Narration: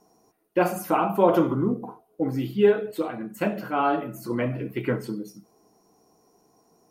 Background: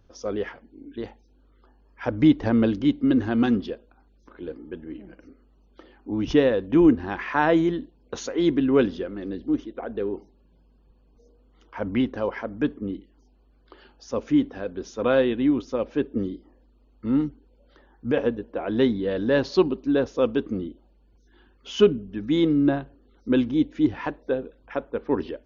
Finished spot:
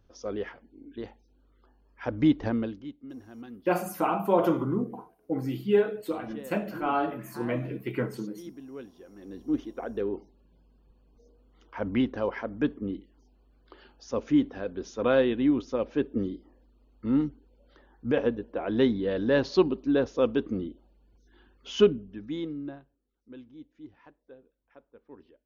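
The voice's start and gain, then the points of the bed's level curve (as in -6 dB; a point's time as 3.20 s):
3.10 s, -4.0 dB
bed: 2.47 s -5 dB
2.98 s -23 dB
8.92 s -23 dB
9.57 s -2.5 dB
21.81 s -2.5 dB
23.12 s -25.5 dB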